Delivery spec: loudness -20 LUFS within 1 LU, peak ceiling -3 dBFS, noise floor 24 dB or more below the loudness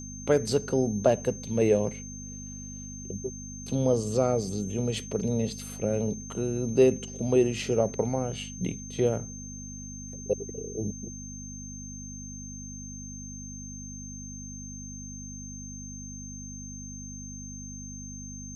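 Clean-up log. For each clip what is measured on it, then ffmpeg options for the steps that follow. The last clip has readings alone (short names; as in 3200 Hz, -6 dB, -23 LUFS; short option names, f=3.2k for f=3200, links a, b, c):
hum 50 Hz; harmonics up to 250 Hz; hum level -39 dBFS; steady tone 6300 Hz; tone level -42 dBFS; loudness -30.5 LUFS; peak -9.5 dBFS; loudness target -20.0 LUFS
-> -af "bandreject=f=50:t=h:w=4,bandreject=f=100:t=h:w=4,bandreject=f=150:t=h:w=4,bandreject=f=200:t=h:w=4,bandreject=f=250:t=h:w=4"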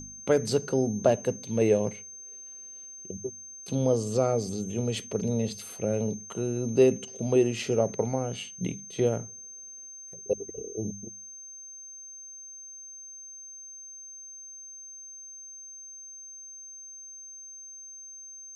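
hum none; steady tone 6300 Hz; tone level -42 dBFS
-> -af "bandreject=f=6.3k:w=30"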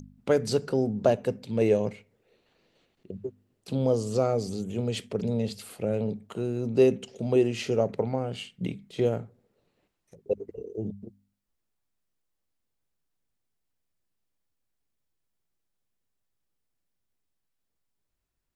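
steady tone none; loudness -28.0 LUFS; peak -9.0 dBFS; loudness target -20.0 LUFS
-> -af "volume=8dB,alimiter=limit=-3dB:level=0:latency=1"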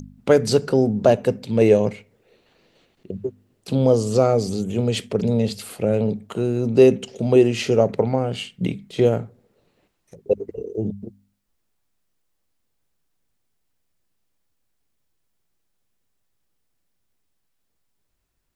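loudness -20.5 LUFS; peak -3.0 dBFS; noise floor -72 dBFS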